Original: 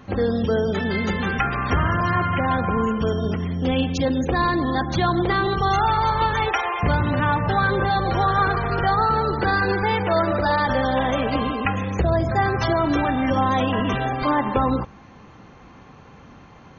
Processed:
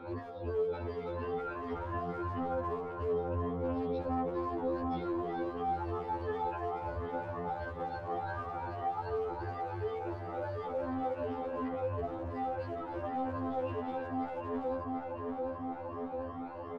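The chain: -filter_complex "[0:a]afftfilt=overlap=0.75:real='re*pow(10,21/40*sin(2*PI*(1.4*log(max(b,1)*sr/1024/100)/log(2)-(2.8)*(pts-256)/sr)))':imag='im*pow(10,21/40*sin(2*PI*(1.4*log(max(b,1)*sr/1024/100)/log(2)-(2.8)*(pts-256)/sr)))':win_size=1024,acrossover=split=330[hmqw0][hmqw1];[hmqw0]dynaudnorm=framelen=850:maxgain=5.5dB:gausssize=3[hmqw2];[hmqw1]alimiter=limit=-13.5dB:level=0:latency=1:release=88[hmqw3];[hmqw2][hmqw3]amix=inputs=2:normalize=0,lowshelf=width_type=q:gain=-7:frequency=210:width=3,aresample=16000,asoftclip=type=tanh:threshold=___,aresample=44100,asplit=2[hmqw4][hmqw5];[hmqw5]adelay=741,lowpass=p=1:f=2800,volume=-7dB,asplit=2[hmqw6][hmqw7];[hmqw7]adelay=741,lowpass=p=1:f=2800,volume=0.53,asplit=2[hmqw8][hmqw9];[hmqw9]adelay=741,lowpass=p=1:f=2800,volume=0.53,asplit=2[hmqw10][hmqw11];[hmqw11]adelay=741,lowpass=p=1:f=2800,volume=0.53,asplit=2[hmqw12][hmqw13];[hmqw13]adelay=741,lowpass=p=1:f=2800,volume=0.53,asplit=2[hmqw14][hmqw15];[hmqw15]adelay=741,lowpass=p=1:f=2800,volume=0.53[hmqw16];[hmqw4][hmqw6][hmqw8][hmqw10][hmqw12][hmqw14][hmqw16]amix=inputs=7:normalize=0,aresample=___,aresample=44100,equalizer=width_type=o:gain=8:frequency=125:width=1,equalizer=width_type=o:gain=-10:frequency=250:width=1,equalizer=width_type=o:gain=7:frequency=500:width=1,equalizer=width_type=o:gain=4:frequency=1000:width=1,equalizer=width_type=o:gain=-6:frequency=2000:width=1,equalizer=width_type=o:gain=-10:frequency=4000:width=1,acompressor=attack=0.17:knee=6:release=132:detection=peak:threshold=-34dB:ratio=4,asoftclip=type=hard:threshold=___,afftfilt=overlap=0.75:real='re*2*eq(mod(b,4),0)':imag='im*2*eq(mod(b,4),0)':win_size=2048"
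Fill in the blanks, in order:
-15dB, 11025, -28.5dB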